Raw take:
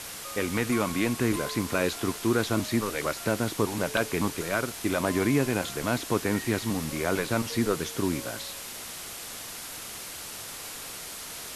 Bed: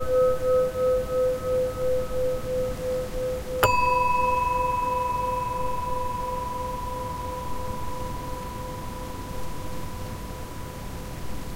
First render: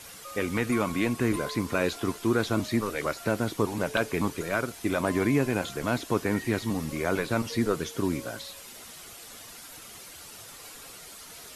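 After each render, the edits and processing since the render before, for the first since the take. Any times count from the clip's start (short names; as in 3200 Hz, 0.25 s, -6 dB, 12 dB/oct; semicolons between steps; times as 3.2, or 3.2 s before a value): denoiser 9 dB, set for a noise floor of -40 dBFS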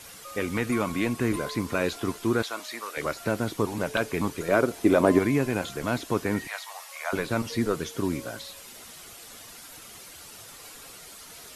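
2.42–2.97 HPF 780 Hz; 4.48–5.19 bell 420 Hz +10 dB 2.2 oct; 6.47–7.13 steep high-pass 640 Hz 48 dB/oct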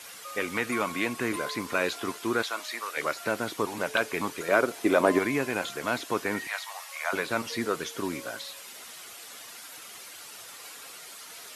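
HPF 430 Hz 6 dB/oct; bell 1900 Hz +3 dB 2.3 oct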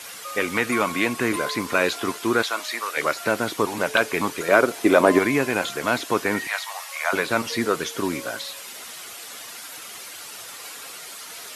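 gain +6.5 dB; limiter -2 dBFS, peak gain reduction 1 dB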